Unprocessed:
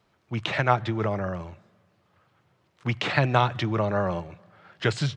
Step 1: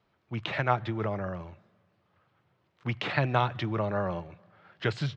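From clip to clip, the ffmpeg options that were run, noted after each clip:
-af "lowpass=4500,volume=0.596"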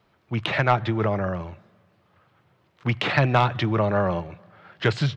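-af "asoftclip=type=tanh:threshold=0.178,volume=2.51"

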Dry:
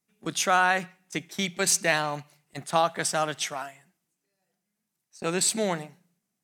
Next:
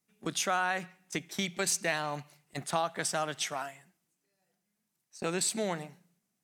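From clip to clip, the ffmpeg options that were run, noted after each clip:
-af "acompressor=threshold=0.0251:ratio=2"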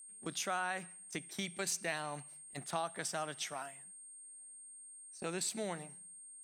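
-af "aeval=exprs='val(0)+0.00631*sin(2*PI*8600*n/s)':c=same,volume=0.447"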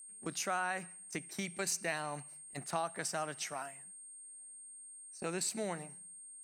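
-af "equalizer=f=3400:w=6.5:g=-11,volume=1.19"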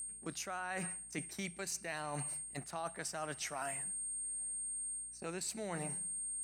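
-af "areverse,acompressor=threshold=0.00355:ratio=12,areverse,aeval=exprs='val(0)+0.000112*(sin(2*PI*60*n/s)+sin(2*PI*2*60*n/s)/2+sin(2*PI*3*60*n/s)/3+sin(2*PI*4*60*n/s)/4+sin(2*PI*5*60*n/s)/5)':c=same,volume=3.76"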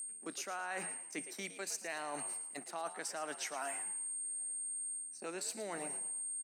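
-filter_complex "[0:a]highpass=f=240:w=0.5412,highpass=f=240:w=1.3066,asplit=5[s0][s1][s2][s3][s4];[s1]adelay=112,afreqshift=80,volume=0.224[s5];[s2]adelay=224,afreqshift=160,volume=0.0851[s6];[s3]adelay=336,afreqshift=240,volume=0.0324[s7];[s4]adelay=448,afreqshift=320,volume=0.0123[s8];[s0][s5][s6][s7][s8]amix=inputs=5:normalize=0"

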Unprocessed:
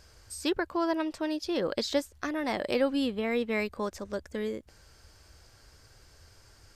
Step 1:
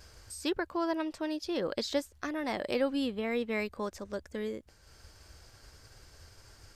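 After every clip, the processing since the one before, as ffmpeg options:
-af "agate=range=0.0224:threshold=0.00282:ratio=3:detection=peak,acompressor=mode=upward:threshold=0.00891:ratio=2.5,volume=0.708"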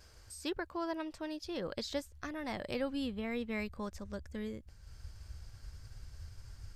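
-af "asubboost=boost=5.5:cutoff=160,volume=0.562"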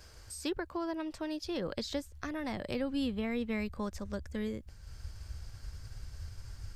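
-filter_complex "[0:a]acrossover=split=360[s0][s1];[s1]acompressor=threshold=0.00891:ratio=6[s2];[s0][s2]amix=inputs=2:normalize=0,volume=1.68"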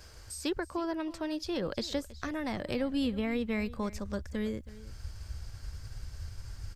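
-af "aecho=1:1:322:0.126,volume=1.33"

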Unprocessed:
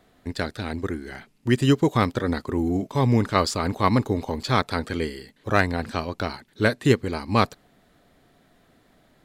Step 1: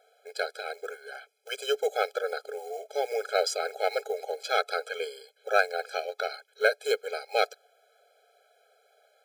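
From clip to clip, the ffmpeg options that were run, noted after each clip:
-af "acrusher=bits=8:mode=log:mix=0:aa=0.000001,asubboost=boost=3:cutoff=70,afftfilt=real='re*eq(mod(floor(b*sr/1024/430),2),1)':imag='im*eq(mod(floor(b*sr/1024/430),2),1)':win_size=1024:overlap=0.75"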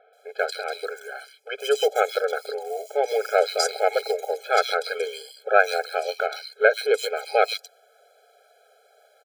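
-filter_complex "[0:a]acrossover=split=2700[s0][s1];[s1]adelay=130[s2];[s0][s2]amix=inputs=2:normalize=0,volume=2.11"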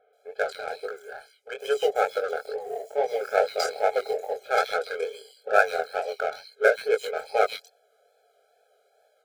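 -filter_complex "[0:a]flanger=delay=18:depth=7.1:speed=2.3,asplit=2[s0][s1];[s1]adynamicsmooth=sensitivity=5:basefreq=650,volume=1.06[s2];[s0][s2]amix=inputs=2:normalize=0,volume=0.531"

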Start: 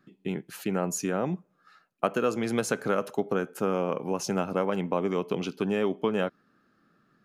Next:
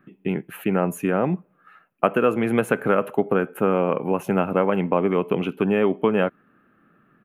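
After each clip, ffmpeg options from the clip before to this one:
-af "firequalizer=gain_entry='entry(2700,0);entry(4800,-28);entry(11000,-3)':delay=0.05:min_phase=1,volume=2.24"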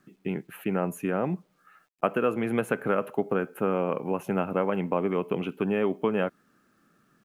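-af "acrusher=bits=10:mix=0:aa=0.000001,volume=0.501"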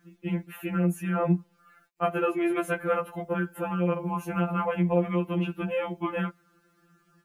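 -af "afftfilt=real='re*2.83*eq(mod(b,8),0)':imag='im*2.83*eq(mod(b,8),0)':win_size=2048:overlap=0.75,volume=1.41"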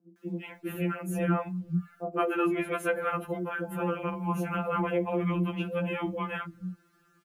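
-filter_complex "[0:a]acrossover=split=190|590[s0][s1][s2];[s2]adelay=160[s3];[s0]adelay=440[s4];[s4][s1][s3]amix=inputs=3:normalize=0"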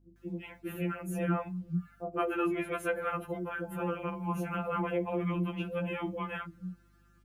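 -af "aeval=exprs='val(0)+0.001*(sin(2*PI*50*n/s)+sin(2*PI*2*50*n/s)/2+sin(2*PI*3*50*n/s)/3+sin(2*PI*4*50*n/s)/4+sin(2*PI*5*50*n/s)/5)':c=same,volume=0.668"

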